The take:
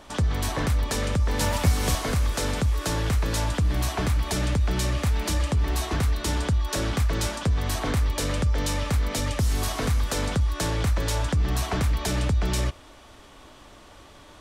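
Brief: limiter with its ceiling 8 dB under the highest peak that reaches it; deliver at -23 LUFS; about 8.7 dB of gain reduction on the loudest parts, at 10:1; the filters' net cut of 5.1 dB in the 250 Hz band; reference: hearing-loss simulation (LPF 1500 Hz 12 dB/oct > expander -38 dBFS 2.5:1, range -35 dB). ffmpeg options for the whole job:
-af "equalizer=f=250:t=o:g=-7.5,acompressor=threshold=-24dB:ratio=10,alimiter=level_in=1dB:limit=-24dB:level=0:latency=1,volume=-1dB,lowpass=1.5k,agate=range=-35dB:threshold=-38dB:ratio=2.5,volume=11.5dB"

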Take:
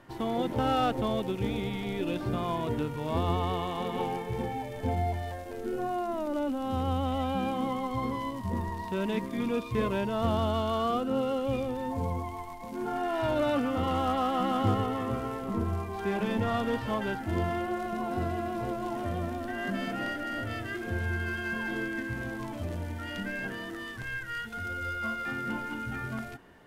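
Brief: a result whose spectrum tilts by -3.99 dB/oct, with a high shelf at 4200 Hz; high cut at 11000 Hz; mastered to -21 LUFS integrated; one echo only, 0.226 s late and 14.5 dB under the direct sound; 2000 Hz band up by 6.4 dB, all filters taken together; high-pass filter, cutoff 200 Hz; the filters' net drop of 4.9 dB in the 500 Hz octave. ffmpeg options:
-af "highpass=200,lowpass=11k,equalizer=f=500:t=o:g=-7,equalizer=f=2k:t=o:g=7.5,highshelf=f=4.2k:g=8,aecho=1:1:226:0.188,volume=10.5dB"

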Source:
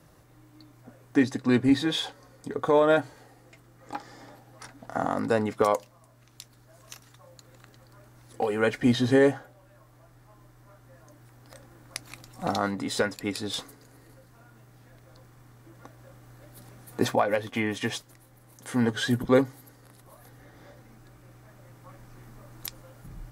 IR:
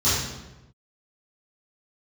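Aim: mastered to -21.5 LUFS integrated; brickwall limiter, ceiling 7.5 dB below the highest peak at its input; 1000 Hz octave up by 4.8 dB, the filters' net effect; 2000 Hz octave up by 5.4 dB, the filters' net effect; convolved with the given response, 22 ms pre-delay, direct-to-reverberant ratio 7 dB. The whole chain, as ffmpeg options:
-filter_complex "[0:a]equalizer=f=1k:t=o:g=5,equalizer=f=2k:t=o:g=5,alimiter=limit=-13.5dB:level=0:latency=1,asplit=2[a][b];[1:a]atrim=start_sample=2205,adelay=22[c];[b][c]afir=irnorm=-1:irlink=0,volume=-23dB[d];[a][d]amix=inputs=2:normalize=0,volume=4.5dB"

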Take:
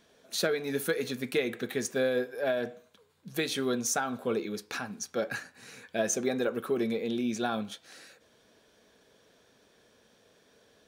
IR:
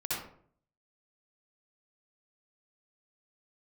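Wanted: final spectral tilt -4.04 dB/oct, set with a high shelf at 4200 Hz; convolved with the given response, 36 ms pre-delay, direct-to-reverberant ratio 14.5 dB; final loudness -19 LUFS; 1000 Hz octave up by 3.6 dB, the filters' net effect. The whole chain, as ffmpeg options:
-filter_complex "[0:a]equalizer=f=1k:t=o:g=6,highshelf=f=4.2k:g=-6.5,asplit=2[a][b];[1:a]atrim=start_sample=2205,adelay=36[c];[b][c]afir=irnorm=-1:irlink=0,volume=-19.5dB[d];[a][d]amix=inputs=2:normalize=0,volume=12dB"

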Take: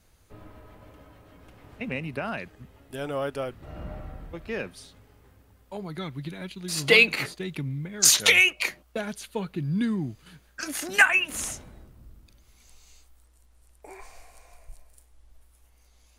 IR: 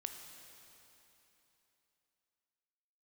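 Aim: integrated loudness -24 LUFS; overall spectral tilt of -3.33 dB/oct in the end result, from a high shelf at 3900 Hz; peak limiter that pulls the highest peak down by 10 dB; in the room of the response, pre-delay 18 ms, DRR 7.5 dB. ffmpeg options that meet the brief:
-filter_complex "[0:a]highshelf=f=3.9k:g=-4,alimiter=limit=-15dB:level=0:latency=1,asplit=2[a][b];[1:a]atrim=start_sample=2205,adelay=18[c];[b][c]afir=irnorm=-1:irlink=0,volume=-5.5dB[d];[a][d]amix=inputs=2:normalize=0,volume=5.5dB"

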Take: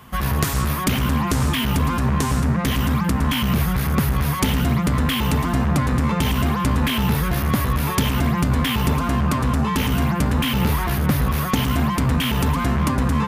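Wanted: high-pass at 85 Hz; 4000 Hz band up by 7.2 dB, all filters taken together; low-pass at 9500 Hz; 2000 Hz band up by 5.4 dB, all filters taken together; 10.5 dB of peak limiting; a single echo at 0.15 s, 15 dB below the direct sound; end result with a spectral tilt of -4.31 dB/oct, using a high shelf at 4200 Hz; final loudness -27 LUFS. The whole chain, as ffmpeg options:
-af "highpass=85,lowpass=9.5k,equalizer=f=2k:t=o:g=4,equalizer=f=4k:t=o:g=4.5,highshelf=f=4.2k:g=7,alimiter=limit=-11dB:level=0:latency=1,aecho=1:1:150:0.178,volume=-6.5dB"

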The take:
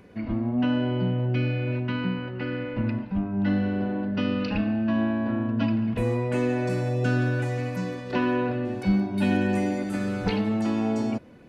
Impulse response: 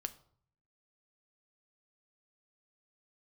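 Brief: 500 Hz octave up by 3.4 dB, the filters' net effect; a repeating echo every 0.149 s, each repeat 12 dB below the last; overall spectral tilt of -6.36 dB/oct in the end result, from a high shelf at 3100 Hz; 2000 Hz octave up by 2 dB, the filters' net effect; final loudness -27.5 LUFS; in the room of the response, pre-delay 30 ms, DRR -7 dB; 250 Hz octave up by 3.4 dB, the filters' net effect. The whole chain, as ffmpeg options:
-filter_complex "[0:a]equalizer=f=250:t=o:g=3.5,equalizer=f=500:t=o:g=3,equalizer=f=2k:t=o:g=4,highshelf=f=3.1k:g=-4,aecho=1:1:149|298|447:0.251|0.0628|0.0157,asplit=2[a][b];[1:a]atrim=start_sample=2205,adelay=30[c];[b][c]afir=irnorm=-1:irlink=0,volume=8.5dB[d];[a][d]amix=inputs=2:normalize=0,volume=-12dB"

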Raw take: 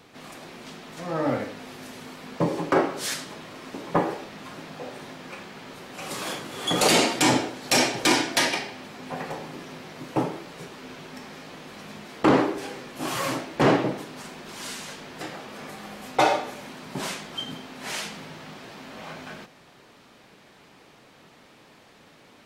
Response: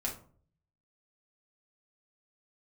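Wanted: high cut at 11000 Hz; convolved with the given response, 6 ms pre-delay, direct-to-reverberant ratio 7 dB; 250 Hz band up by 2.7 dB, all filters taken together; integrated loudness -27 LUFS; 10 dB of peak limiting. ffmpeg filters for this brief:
-filter_complex "[0:a]lowpass=11k,equalizer=f=250:t=o:g=3.5,alimiter=limit=-15dB:level=0:latency=1,asplit=2[a][b];[1:a]atrim=start_sample=2205,adelay=6[c];[b][c]afir=irnorm=-1:irlink=0,volume=-9.5dB[d];[a][d]amix=inputs=2:normalize=0,volume=2.5dB"

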